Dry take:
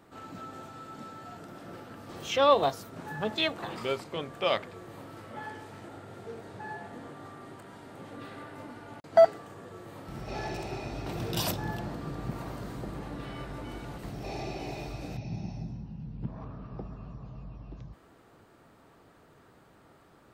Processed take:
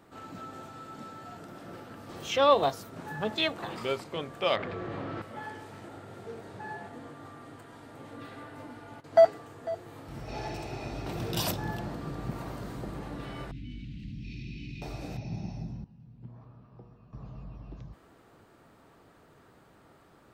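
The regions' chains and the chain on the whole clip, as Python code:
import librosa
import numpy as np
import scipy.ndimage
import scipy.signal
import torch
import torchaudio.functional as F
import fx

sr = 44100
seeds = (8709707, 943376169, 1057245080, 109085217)

y = fx.chain(x, sr, fx.lowpass(hz=3100.0, slope=12),
    fx.notch(hz=910.0, q=14.0),
    fx.env_flatten(amount_pct=70), at=(4.56, 5.22))
y = fx.chain(y, sr, fx.notch_comb(f0_hz=190.0),
    fx.echo_single(ms=498, db=-16.5), at=(6.89, 10.81))
y = fx.chain(y, sr, fx.ellip_bandstop(low_hz=250.0, high_hz=2500.0, order=3, stop_db=50),
    fx.air_absorb(metres=220.0),
    fx.env_flatten(amount_pct=50), at=(13.51, 14.82))
y = fx.chain(y, sr, fx.highpass(hz=67.0, slope=12),
    fx.comb_fb(f0_hz=120.0, decay_s=1.0, harmonics='all', damping=0.0, mix_pct=80), at=(15.84, 17.13))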